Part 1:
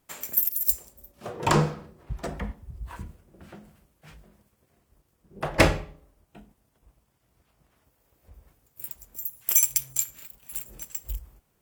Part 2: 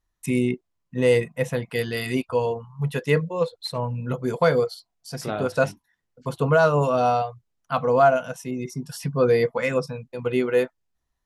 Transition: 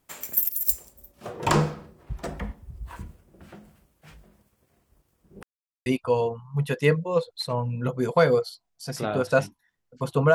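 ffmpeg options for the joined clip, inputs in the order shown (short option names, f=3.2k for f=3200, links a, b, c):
-filter_complex "[0:a]apad=whole_dur=10.34,atrim=end=10.34,asplit=2[a][b];[a]atrim=end=5.43,asetpts=PTS-STARTPTS,afade=t=out:st=5.426:d=0.004:c=hsin[c];[b]atrim=start=5.43:end=5.86,asetpts=PTS-STARTPTS,volume=0[d];[1:a]atrim=start=2.11:end=6.59,asetpts=PTS-STARTPTS,afade=t=in:d=0.004:c=hsin[e];[c][d][e]concat=n=3:v=0:a=1"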